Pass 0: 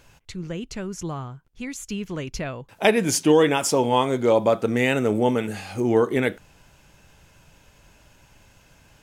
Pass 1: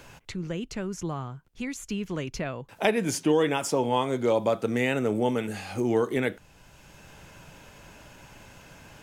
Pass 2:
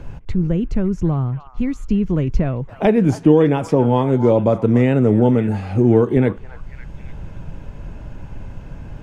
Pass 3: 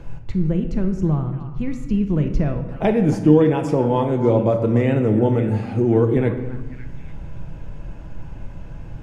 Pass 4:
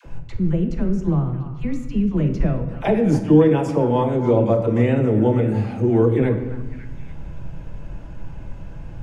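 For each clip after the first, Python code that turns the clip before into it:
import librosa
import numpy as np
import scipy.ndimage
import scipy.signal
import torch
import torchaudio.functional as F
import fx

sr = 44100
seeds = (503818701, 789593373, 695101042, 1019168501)

y1 = fx.band_squash(x, sr, depth_pct=40)
y1 = y1 * 10.0 ** (-4.5 / 20.0)
y2 = fx.tilt_eq(y1, sr, slope=-4.5)
y2 = fx.echo_stepped(y2, sr, ms=278, hz=1100.0, octaves=0.7, feedback_pct=70, wet_db=-9.5)
y2 = y2 * 10.0 ** (4.0 / 20.0)
y3 = fx.room_shoebox(y2, sr, seeds[0], volume_m3=620.0, walls='mixed', distance_m=0.71)
y3 = y3 * 10.0 ** (-3.5 / 20.0)
y4 = fx.dispersion(y3, sr, late='lows', ms=55.0, hz=580.0)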